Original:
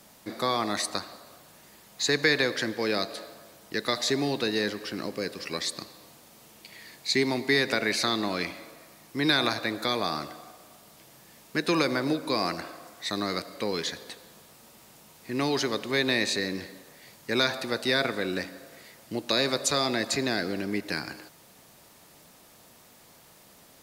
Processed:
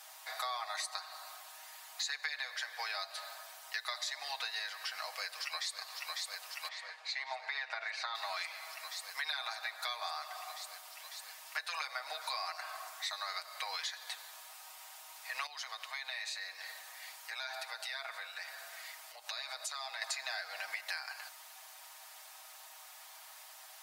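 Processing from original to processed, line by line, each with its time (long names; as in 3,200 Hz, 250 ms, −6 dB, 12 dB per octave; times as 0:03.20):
0:05.13–0:05.79: delay throw 550 ms, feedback 85%, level −7.5 dB
0:06.68–0:08.15: head-to-tape spacing loss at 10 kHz 23 dB
0:15.46–0:20.02: downward compressor 3 to 1, threshold −41 dBFS
whole clip: elliptic high-pass filter 710 Hz, stop band 50 dB; comb filter 6.4 ms, depth 76%; downward compressor 6 to 1, threshold −38 dBFS; level +1.5 dB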